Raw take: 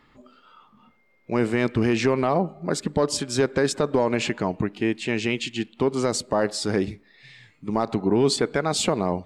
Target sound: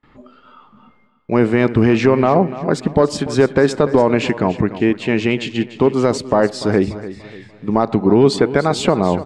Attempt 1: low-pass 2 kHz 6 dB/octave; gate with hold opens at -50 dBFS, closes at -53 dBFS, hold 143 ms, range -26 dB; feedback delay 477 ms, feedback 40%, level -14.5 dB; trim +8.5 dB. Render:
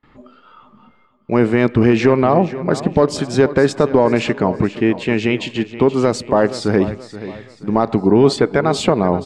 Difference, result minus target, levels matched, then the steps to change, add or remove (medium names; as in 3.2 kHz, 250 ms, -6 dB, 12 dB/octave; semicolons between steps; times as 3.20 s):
echo 185 ms late
change: feedback delay 292 ms, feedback 40%, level -14.5 dB